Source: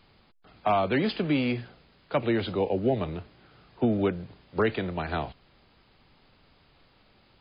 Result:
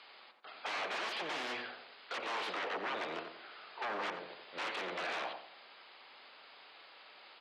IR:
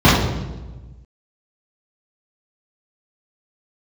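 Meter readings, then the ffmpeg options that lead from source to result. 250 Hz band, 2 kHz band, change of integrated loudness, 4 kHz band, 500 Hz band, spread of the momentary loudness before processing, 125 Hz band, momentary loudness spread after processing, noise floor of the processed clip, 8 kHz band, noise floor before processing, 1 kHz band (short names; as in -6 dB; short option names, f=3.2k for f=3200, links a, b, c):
-23.0 dB, -2.5 dB, -11.5 dB, -2.0 dB, -15.0 dB, 10 LU, -31.5 dB, 18 LU, -58 dBFS, n/a, -62 dBFS, -7.5 dB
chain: -filter_complex "[0:a]aemphasis=mode=production:type=riaa,acompressor=threshold=-33dB:ratio=2,aeval=exprs='0.0141*(abs(mod(val(0)/0.0141+3,4)-2)-1)':c=same,highpass=530,lowpass=3k,asplit=2[a][b];[b]adelay=89,lowpass=f=1.4k:p=1,volume=-4.5dB,asplit=2[c][d];[d]adelay=89,lowpass=f=1.4k:p=1,volume=0.4,asplit=2[e][f];[f]adelay=89,lowpass=f=1.4k:p=1,volume=0.4,asplit=2[g][h];[h]adelay=89,lowpass=f=1.4k:p=1,volume=0.4,asplit=2[i][j];[j]adelay=89,lowpass=f=1.4k:p=1,volume=0.4[k];[a][c][e][g][i][k]amix=inputs=6:normalize=0,volume=6.5dB"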